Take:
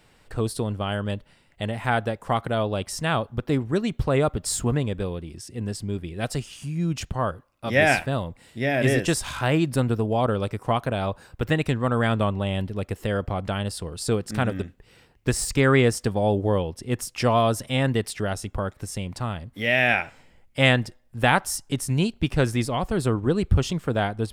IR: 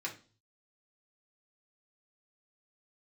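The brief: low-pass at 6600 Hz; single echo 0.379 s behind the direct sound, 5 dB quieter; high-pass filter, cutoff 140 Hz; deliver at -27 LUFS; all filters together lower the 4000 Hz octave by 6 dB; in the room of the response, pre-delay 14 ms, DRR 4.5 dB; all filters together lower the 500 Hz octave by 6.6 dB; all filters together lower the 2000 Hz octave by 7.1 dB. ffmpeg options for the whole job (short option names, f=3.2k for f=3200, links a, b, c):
-filter_complex "[0:a]highpass=140,lowpass=6.6k,equalizer=f=500:t=o:g=-8,equalizer=f=2k:t=o:g=-7.5,equalizer=f=4k:t=o:g=-4.5,aecho=1:1:379:0.562,asplit=2[a][b];[1:a]atrim=start_sample=2205,adelay=14[c];[b][c]afir=irnorm=-1:irlink=0,volume=-6.5dB[d];[a][d]amix=inputs=2:normalize=0,volume=1dB"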